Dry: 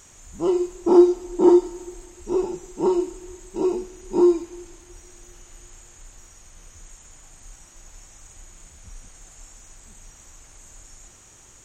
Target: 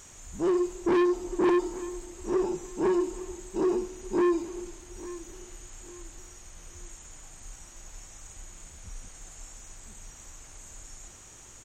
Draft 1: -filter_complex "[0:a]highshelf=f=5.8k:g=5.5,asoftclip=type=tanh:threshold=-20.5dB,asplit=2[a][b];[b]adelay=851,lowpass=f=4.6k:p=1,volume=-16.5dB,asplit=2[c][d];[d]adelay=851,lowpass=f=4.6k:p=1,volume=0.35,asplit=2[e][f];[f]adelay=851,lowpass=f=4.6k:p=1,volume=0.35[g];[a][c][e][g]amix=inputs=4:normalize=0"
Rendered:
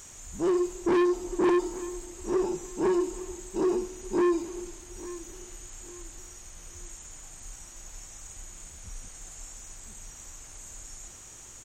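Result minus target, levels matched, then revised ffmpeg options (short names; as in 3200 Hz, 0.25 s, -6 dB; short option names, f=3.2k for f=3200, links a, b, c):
8000 Hz band +3.5 dB
-filter_complex "[0:a]asoftclip=type=tanh:threshold=-20.5dB,asplit=2[a][b];[b]adelay=851,lowpass=f=4.6k:p=1,volume=-16.5dB,asplit=2[c][d];[d]adelay=851,lowpass=f=4.6k:p=1,volume=0.35,asplit=2[e][f];[f]adelay=851,lowpass=f=4.6k:p=1,volume=0.35[g];[a][c][e][g]amix=inputs=4:normalize=0"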